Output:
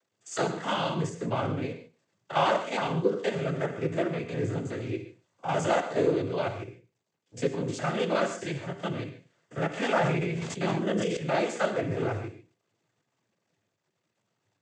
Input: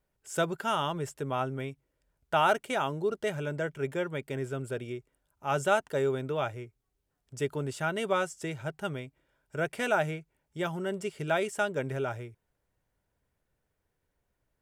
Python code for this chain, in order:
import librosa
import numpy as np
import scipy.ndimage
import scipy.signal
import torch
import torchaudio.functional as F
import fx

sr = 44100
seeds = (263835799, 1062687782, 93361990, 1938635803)

p1 = fx.spec_steps(x, sr, hold_ms=50)
p2 = fx.peak_eq(p1, sr, hz=1300.0, db=-6.5, octaves=0.28)
p3 = np.clip(p2, -10.0 ** (-26.5 / 20.0), 10.0 ** (-26.5 / 20.0))
p4 = p2 + F.gain(torch.from_numpy(p3), -3.5).numpy()
p5 = fx.quant_dither(p4, sr, seeds[0], bits=12, dither='none')
p6 = fx.noise_vocoder(p5, sr, seeds[1], bands=16)
p7 = p6 + fx.echo_single(p6, sr, ms=114, db=-22.0, dry=0)
p8 = fx.rev_gated(p7, sr, seeds[2], gate_ms=170, shape='flat', drr_db=8.0)
y = fx.sustainer(p8, sr, db_per_s=21.0, at=(9.86, 11.17))